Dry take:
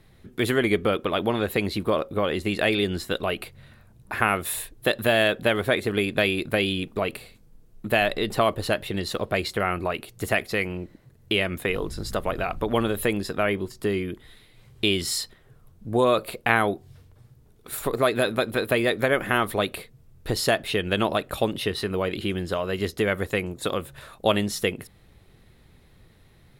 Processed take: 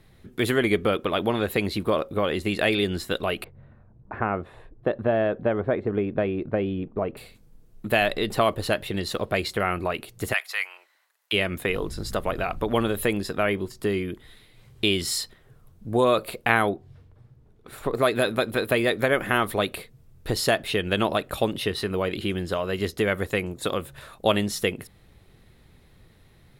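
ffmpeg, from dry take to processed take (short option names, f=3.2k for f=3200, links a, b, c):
-filter_complex "[0:a]asettb=1/sr,asplit=3[a][b][c];[a]atrim=end=3.444[d];[b]atrim=start=3.44:end=7.17,asetpts=PTS-STARTPTS,afade=t=in:d=0.004:c=qsin,afade=t=out:st=3.726:d=0.004:c=qsin,lowpass=1k[e];[c]atrim=start=7.166[f];[d][e]acrossfade=d=0.004:c1=hsin:c2=qsin[g];[g][f]acrossfade=d=0.004:c1=qsin:c2=hsin,asplit=3[h][i][j];[h]afade=t=out:st=10.32:d=0.02[k];[i]highpass=f=890:w=0.5412,highpass=f=890:w=1.3066,afade=t=in:st=10.32:d=0.02,afade=t=out:st=11.32:d=0.02[l];[j]afade=t=in:st=11.32:d=0.02[m];[k][l][m]amix=inputs=3:normalize=0,asettb=1/sr,asplit=3[n][o][p];[n]atrim=end=16.694[q];[o]atrim=start=16.69:end=17.95,asetpts=PTS-STARTPTS,afade=t=in:d=0.004:c=qsin,afade=t=out:st=1.256:d=0.004:c=qsin,lowpass=f=1.9k:p=1[r];[p]atrim=start=17.946[s];[q][r]acrossfade=d=0.004:c1=hsin:c2=qsin[t];[t][s]acrossfade=d=0.004:c1=qsin:c2=hsin"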